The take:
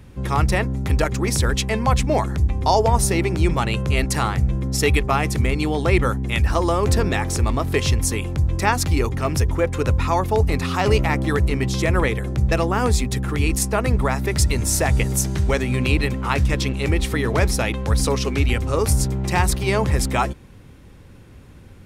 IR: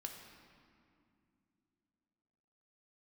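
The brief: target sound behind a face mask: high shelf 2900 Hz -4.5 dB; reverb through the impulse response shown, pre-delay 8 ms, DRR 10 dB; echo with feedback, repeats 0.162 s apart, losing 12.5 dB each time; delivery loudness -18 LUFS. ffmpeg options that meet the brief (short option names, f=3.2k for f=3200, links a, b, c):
-filter_complex "[0:a]aecho=1:1:162|324|486:0.237|0.0569|0.0137,asplit=2[a][b];[1:a]atrim=start_sample=2205,adelay=8[c];[b][c]afir=irnorm=-1:irlink=0,volume=-7dB[d];[a][d]amix=inputs=2:normalize=0,highshelf=f=2.9k:g=-4.5,volume=3dB"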